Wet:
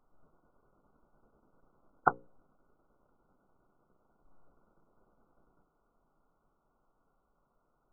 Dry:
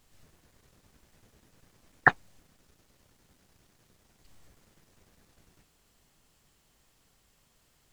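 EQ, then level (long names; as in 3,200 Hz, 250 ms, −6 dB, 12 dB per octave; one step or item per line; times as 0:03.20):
linear-phase brick-wall low-pass 1,500 Hz
parametric band 84 Hz −13.5 dB 1.7 octaves
mains-hum notches 60/120/180/240/300/360/420/480/540 Hz
−1.5 dB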